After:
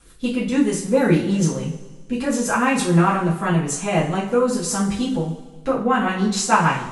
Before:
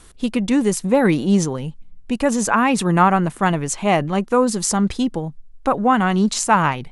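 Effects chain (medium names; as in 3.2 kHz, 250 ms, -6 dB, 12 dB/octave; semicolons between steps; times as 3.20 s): rotary cabinet horn 6.7 Hz; two-slope reverb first 0.4 s, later 1.6 s, from -16 dB, DRR -8.5 dB; trim -7.5 dB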